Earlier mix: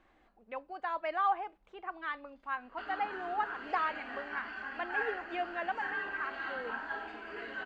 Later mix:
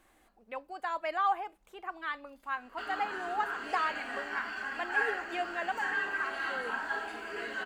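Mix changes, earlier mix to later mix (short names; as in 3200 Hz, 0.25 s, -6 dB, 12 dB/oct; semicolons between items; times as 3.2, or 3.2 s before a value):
background: send +7.5 dB; master: remove air absorption 200 m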